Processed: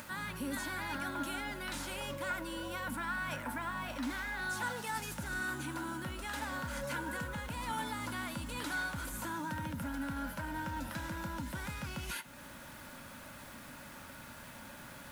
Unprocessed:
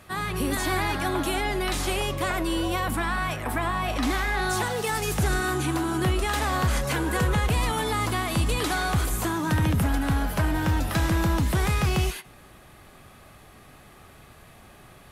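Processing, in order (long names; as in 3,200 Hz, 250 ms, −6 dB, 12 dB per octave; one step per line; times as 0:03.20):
reversed playback
downward compressor 10 to 1, threshold −31 dBFS, peak gain reduction 12 dB
reversed playback
guitar amp tone stack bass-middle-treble 5-5-5
hollow resonant body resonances 260/550/910/1,400 Hz, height 18 dB, ringing for 30 ms
bit-depth reduction 10 bits, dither none
upward compression, threshold −44 dBFS
level +1.5 dB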